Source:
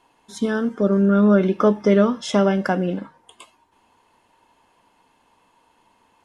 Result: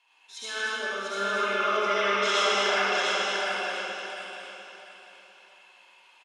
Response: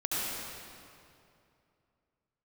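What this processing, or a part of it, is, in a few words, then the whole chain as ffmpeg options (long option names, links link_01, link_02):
station announcement: -filter_complex "[0:a]highpass=460,lowpass=3900,equalizer=frequency=2500:width_type=o:width=0.55:gain=8,aecho=1:1:49.56|230.3:0.282|0.562[link_01];[1:a]atrim=start_sample=2205[link_02];[link_01][link_02]afir=irnorm=-1:irlink=0,aderivative,aecho=1:1:697|1394|2091|2788:0.668|0.187|0.0524|0.0147,volume=5dB"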